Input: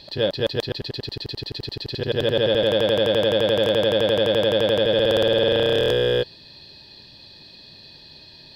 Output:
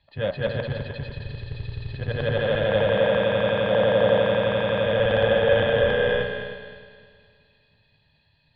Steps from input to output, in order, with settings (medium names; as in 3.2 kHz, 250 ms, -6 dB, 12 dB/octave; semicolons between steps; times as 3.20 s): coarse spectral quantiser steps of 15 dB; in parallel at -1 dB: peak limiter -19 dBFS, peak gain reduction 10 dB; on the sum: low-pass 2.4 kHz 24 dB/octave; peaking EQ 360 Hz -14 dB 0.71 oct; de-hum 60.3 Hz, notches 27; on a send: multi-head delay 103 ms, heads second and third, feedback 58%, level -7 dB; on the sum: three bands expanded up and down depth 70%